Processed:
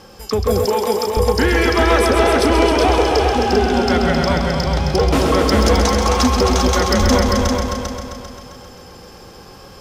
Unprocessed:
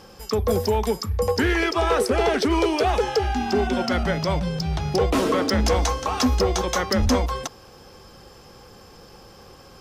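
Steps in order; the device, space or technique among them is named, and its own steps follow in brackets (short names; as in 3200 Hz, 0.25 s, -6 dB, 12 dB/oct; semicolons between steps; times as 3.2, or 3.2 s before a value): multi-head tape echo (multi-head echo 0.132 s, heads all three, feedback 50%, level -7 dB; wow and flutter 12 cents); 0.65–1.17 HPF 300 Hz 12 dB/oct; gain +4 dB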